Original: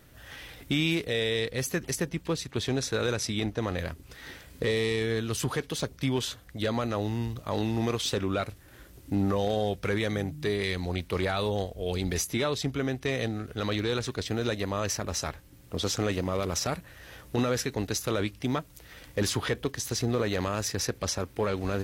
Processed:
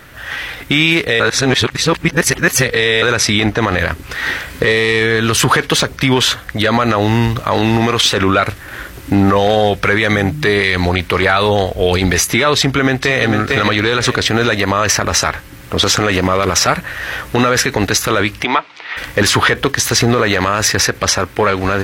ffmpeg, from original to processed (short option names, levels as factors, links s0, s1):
-filter_complex "[0:a]asplit=2[s0][s1];[s1]afade=t=in:st=12.57:d=0.01,afade=t=out:st=13.28:d=0.01,aecho=0:1:450|900|1350:0.354813|0.106444|0.0319332[s2];[s0][s2]amix=inputs=2:normalize=0,asplit=3[s3][s4][s5];[s3]afade=t=out:st=18.43:d=0.02[s6];[s4]highpass=460,equalizer=f=540:t=q:w=4:g=-7,equalizer=f=920:t=q:w=4:g=4,equalizer=f=1600:t=q:w=4:g=-5,equalizer=f=2300:t=q:w=4:g=4,lowpass=f=4400:w=0.5412,lowpass=f=4400:w=1.3066,afade=t=in:st=18.43:d=0.02,afade=t=out:st=18.96:d=0.02[s7];[s5]afade=t=in:st=18.96:d=0.02[s8];[s6][s7][s8]amix=inputs=3:normalize=0,asplit=3[s9][s10][s11];[s9]atrim=end=1.202[s12];[s10]atrim=start=1.198:end=3.022,asetpts=PTS-STARTPTS,areverse[s13];[s11]atrim=start=3.018[s14];[s12][s13]acrossfade=d=0.004:c1=hsin:c2=hsin[s15];[s15][s14]acrossfade=d=0.004:c1=hsin:c2=hsin,equalizer=f=1600:w=0.6:g=11,dynaudnorm=f=630:g=5:m=1.78,alimiter=level_in=4.73:limit=0.891:release=50:level=0:latency=1,volume=0.891"